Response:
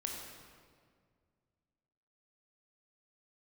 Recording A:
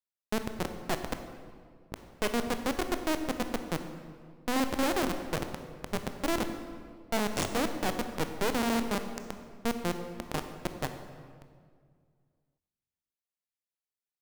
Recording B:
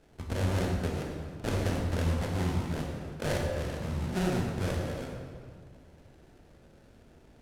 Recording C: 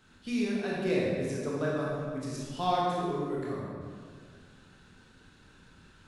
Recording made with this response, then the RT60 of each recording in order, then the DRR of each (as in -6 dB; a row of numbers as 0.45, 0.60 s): B; 2.0, 1.9, 1.9 s; 7.0, 0.0, -5.0 dB